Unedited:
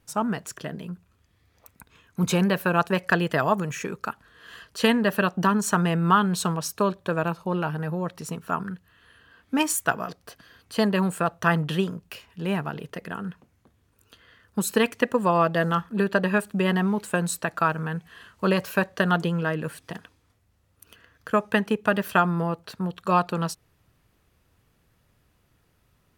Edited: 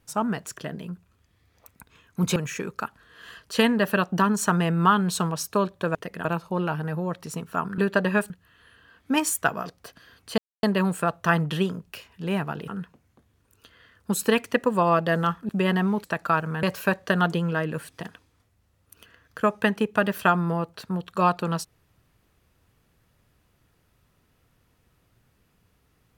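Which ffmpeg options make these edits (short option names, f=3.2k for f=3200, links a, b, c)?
-filter_complex "[0:a]asplit=11[a][b][c][d][e][f][g][h][i][j][k];[a]atrim=end=2.362[l];[b]atrim=start=3.608:end=7.202[m];[c]atrim=start=12.858:end=13.162[n];[d]atrim=start=7.198:end=8.732[o];[e]atrim=start=15.968:end=16.492[p];[f]atrim=start=8.728:end=10.81,asetpts=PTS-STARTPTS,afade=t=out:st=2.078:d=0.004:c=hsin,apad=pad_dur=0.25[q];[g]atrim=start=10.81:end=12.862,asetpts=PTS-STARTPTS,afade=t=in:d=0.004:c=hsin[r];[h]atrim=start=13.158:end=15.972[s];[i]atrim=start=16.488:end=17.042[t];[j]atrim=start=17.358:end=17.952[u];[k]atrim=start=18.528[v];[l][m]acrossfade=d=0.004:c1=hsin:c2=hsin[w];[w][n]acrossfade=d=0.004:c1=hsin:c2=hsin[x];[x][o]acrossfade=d=0.004:c1=hsin:c2=hsin[y];[y][p]acrossfade=d=0.004:c1=hsin:c2=hsin[z];[q][r]concat=n=2:v=0:a=1[aa];[z][aa]acrossfade=d=0.004:c1=hsin:c2=hsin[ab];[ab][s]acrossfade=d=0.004:c1=hsin:c2=hsin[ac];[ac][t]acrossfade=d=0.004:c1=hsin:c2=hsin[ad];[ad][u]acrossfade=d=0.004:c1=hsin:c2=hsin[ae];[ae][v]acrossfade=d=0.004:c1=hsin:c2=hsin"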